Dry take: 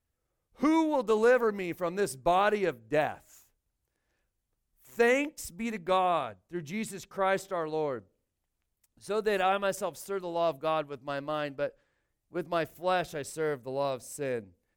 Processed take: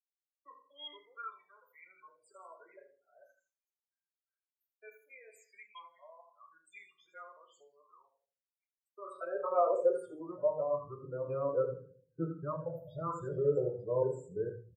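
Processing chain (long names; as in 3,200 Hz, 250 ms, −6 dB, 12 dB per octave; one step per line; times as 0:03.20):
reversed piece by piece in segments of 230 ms
spectral peaks only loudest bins 16
high-shelf EQ 3,400 Hz −8.5 dB
repeating echo 80 ms, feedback 28%, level −12 dB
on a send at −2 dB: convolution reverb RT60 0.45 s, pre-delay 5 ms
on the sum: high-pass filter sweep 3,100 Hz → 170 Hz, 0:08.44–0:10.75
phaser with its sweep stopped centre 1,300 Hz, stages 8
dynamic equaliser 730 Hz, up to −5 dB, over −41 dBFS, Q 5.2
pitch shifter −1.5 semitones
all-pass phaser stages 8, 0.45 Hz, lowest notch 340–2,700 Hz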